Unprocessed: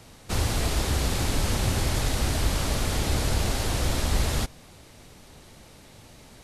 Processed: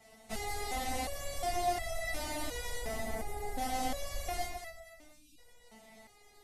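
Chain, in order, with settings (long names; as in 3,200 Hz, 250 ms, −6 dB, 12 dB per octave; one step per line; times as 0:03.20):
0:02.78–0:03.58: parametric band 4,200 Hz −13.5 dB 2.1 octaves
delay that swaps between a low-pass and a high-pass 120 ms, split 1,100 Hz, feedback 56%, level −2 dB
0:05.13–0:05.38: time-frequency box erased 310–2,300 Hz
high-shelf EQ 7,900 Hz +5.5 dB
hollow resonant body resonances 720/2,000 Hz, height 17 dB, ringing for 45 ms
step-sequenced resonator 2.8 Hz 220–660 Hz
level +1.5 dB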